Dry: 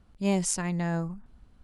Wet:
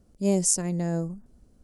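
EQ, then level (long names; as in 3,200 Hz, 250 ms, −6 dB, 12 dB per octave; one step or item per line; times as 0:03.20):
low-shelf EQ 200 Hz −10 dB
flat-topped bell 1,800 Hz −14.5 dB 2.7 octaves
+7.0 dB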